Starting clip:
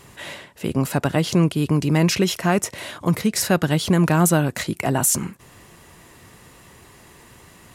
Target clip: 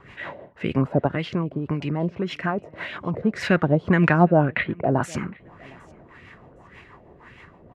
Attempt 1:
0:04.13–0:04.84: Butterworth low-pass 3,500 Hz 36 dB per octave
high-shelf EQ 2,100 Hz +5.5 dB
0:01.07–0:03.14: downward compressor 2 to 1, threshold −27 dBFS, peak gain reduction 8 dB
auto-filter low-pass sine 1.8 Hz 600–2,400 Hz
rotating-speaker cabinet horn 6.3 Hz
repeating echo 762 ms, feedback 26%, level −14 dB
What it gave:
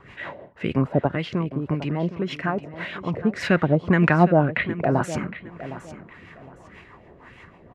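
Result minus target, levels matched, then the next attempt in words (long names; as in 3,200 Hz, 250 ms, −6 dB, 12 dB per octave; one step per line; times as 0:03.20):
echo-to-direct +12 dB
0:04.13–0:04.84: Butterworth low-pass 3,500 Hz 36 dB per octave
high-shelf EQ 2,100 Hz +5.5 dB
0:01.07–0:03.14: downward compressor 2 to 1, threshold −27 dBFS, peak gain reduction 8 dB
auto-filter low-pass sine 1.8 Hz 600–2,400 Hz
rotating-speaker cabinet horn 6.3 Hz
repeating echo 762 ms, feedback 26%, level −26 dB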